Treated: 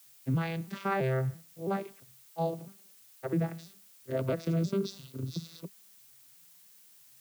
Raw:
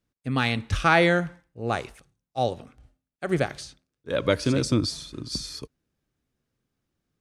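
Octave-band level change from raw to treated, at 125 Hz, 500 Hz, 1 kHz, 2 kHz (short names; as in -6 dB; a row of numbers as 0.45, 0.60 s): -3.5, -7.5, -10.0, -15.5 dB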